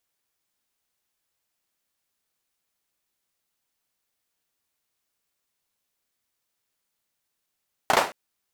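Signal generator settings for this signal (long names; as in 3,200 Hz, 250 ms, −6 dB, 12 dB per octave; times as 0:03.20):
synth clap length 0.22 s, bursts 3, apart 34 ms, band 710 Hz, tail 0.32 s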